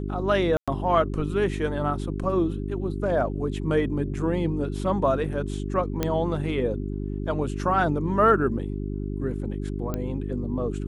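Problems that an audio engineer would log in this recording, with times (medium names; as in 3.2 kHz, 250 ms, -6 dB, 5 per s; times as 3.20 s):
hum 50 Hz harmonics 8 -30 dBFS
0.57–0.68 s: dropout 106 ms
6.03 s: pop -10 dBFS
9.94 s: pop -16 dBFS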